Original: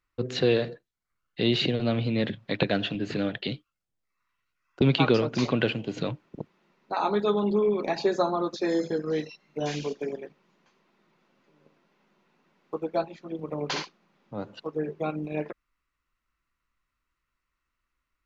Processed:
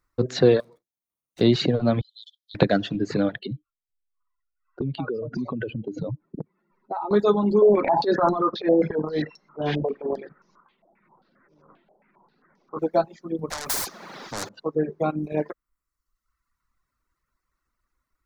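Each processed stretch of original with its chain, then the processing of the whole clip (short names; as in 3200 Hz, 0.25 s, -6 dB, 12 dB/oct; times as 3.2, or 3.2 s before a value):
0.6–1.41 minimum comb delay 0.31 ms + HPF 210 Hz 6 dB/oct + compressor 5:1, threshold -44 dBFS
2.01–2.55 brick-wall FIR high-pass 3000 Hz + level quantiser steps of 9 dB
3.39–7.11 spectral contrast raised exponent 1.8 + compressor, threshold -31 dBFS
7.62–12.79 air absorption 200 m + transient shaper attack -12 dB, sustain +7 dB + stepped low-pass 7.5 Hz 680–5900 Hz
13.5–14.49 overdrive pedal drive 28 dB, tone 6400 Hz, clips at -17.5 dBFS + spectral compressor 4:1
whole clip: reverb removal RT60 1.1 s; bell 2800 Hz -12.5 dB 0.84 oct; gain +7 dB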